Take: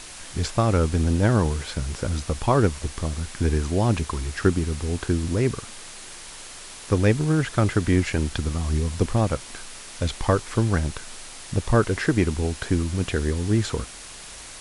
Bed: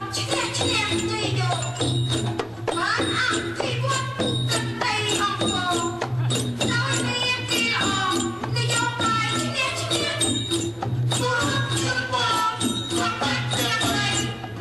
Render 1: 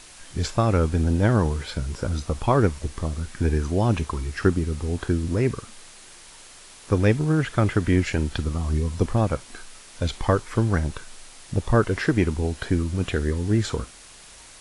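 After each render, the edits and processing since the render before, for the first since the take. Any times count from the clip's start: noise print and reduce 6 dB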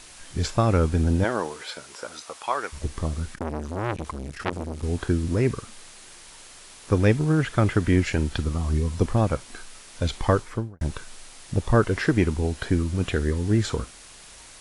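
1.23–2.72 s: high-pass 370 Hz -> 990 Hz; 3.35–4.83 s: transformer saturation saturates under 1.8 kHz; 10.37–10.81 s: studio fade out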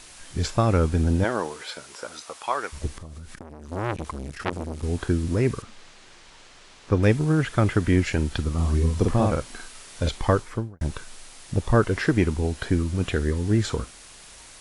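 2.95–3.72 s: compression 12:1, threshold -35 dBFS; 5.62–7.03 s: distance through air 98 m; 8.53–10.09 s: doubling 49 ms -3 dB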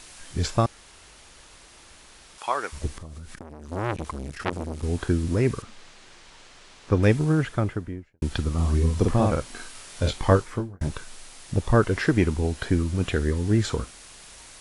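0.66–2.38 s: room tone; 7.20–8.22 s: studio fade out; 9.53–10.89 s: doubling 21 ms -6 dB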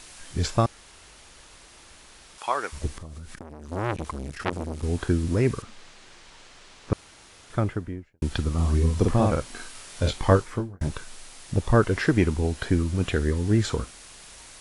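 6.93–7.50 s: room tone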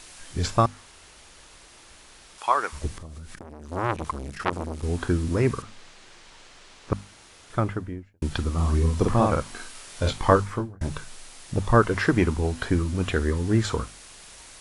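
hum notches 50/100/150/200/250 Hz; dynamic bell 1.1 kHz, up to +6 dB, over -42 dBFS, Q 1.6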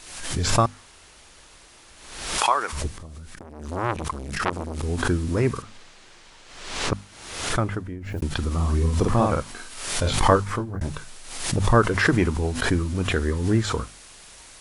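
swell ahead of each attack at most 60 dB/s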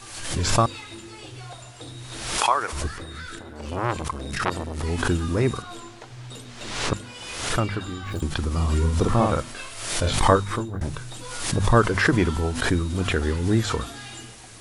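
add bed -16.5 dB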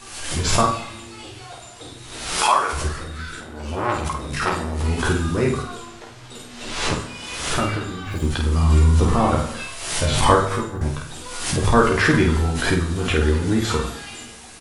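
early reflections 13 ms -4 dB, 50 ms -4.5 dB; plate-style reverb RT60 0.79 s, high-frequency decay 0.85×, DRR 5.5 dB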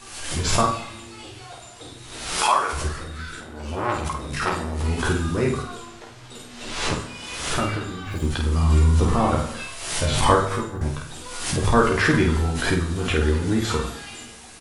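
trim -2 dB

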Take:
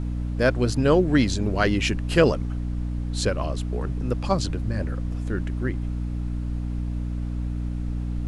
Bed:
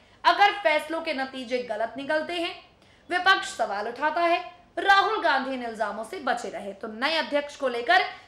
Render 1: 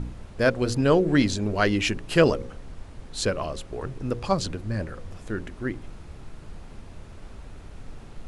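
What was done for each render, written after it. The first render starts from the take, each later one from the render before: de-hum 60 Hz, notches 9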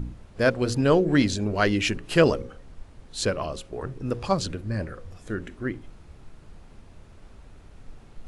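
noise print and reduce 6 dB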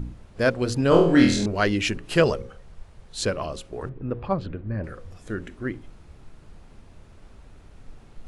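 0.89–1.46 s: flutter echo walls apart 4.1 m, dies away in 0.54 s; 2.20–3.17 s: peaking EQ 280 Hz -13 dB 0.31 oct; 3.89–4.84 s: distance through air 490 m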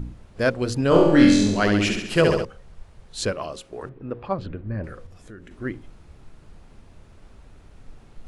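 0.88–2.45 s: flutter echo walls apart 11.7 m, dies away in 0.83 s; 3.32–4.39 s: bass shelf 140 Hz -11 dB; 5.06–5.51 s: compression 2.5:1, threshold -43 dBFS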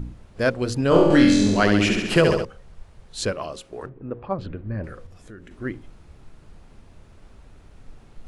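1.10–2.33 s: three bands compressed up and down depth 70%; 3.86–4.39 s: low-pass 1.5 kHz 6 dB/octave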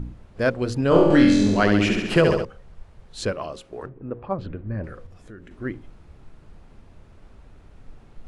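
treble shelf 4 kHz -7 dB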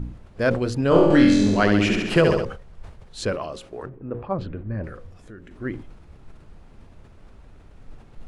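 decay stretcher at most 95 dB/s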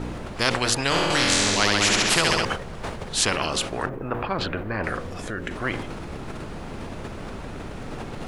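spectrum-flattening compressor 4:1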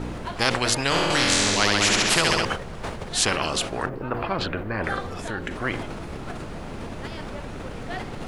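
add bed -16 dB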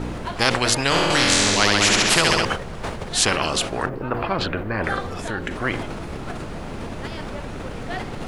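trim +3 dB

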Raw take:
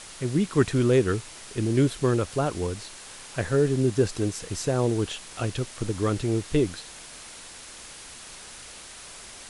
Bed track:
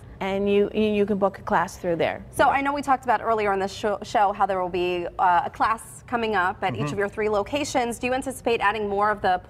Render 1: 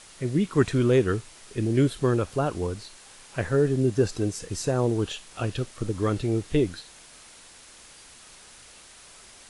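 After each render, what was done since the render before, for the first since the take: noise print and reduce 6 dB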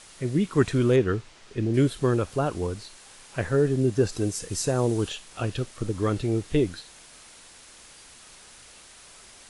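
0.96–1.74 s: distance through air 86 m; 4.11–5.08 s: treble shelf 8.8 kHz -> 4.7 kHz +8 dB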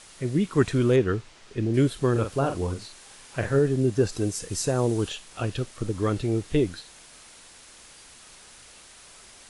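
2.11–3.59 s: doubling 44 ms -7 dB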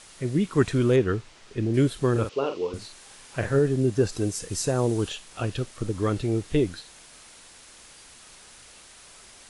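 2.29–2.74 s: cabinet simulation 360–5600 Hz, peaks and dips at 440 Hz +7 dB, 710 Hz -8 dB, 1.6 kHz -10 dB, 2.8 kHz +6 dB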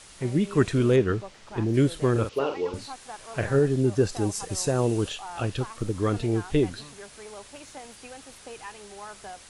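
add bed track -20 dB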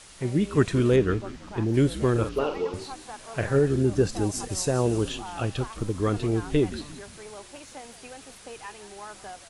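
frequency-shifting echo 175 ms, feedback 42%, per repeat -68 Hz, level -15 dB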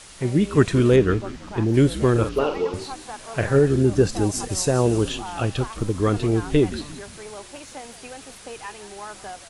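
trim +4.5 dB

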